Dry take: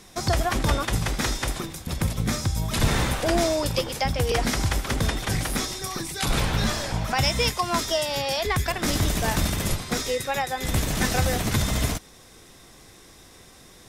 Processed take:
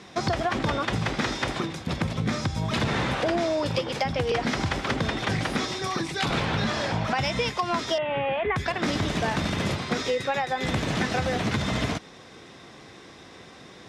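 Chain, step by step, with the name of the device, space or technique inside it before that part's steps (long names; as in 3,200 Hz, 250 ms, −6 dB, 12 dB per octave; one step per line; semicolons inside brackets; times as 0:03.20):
AM radio (band-pass filter 120–3,800 Hz; downward compressor, threshold −27 dBFS, peak gain reduction 8 dB; soft clipping −19 dBFS, distortion −25 dB)
0:07.98–0:08.56: Butterworth low-pass 2,900 Hz 48 dB per octave
level +5.5 dB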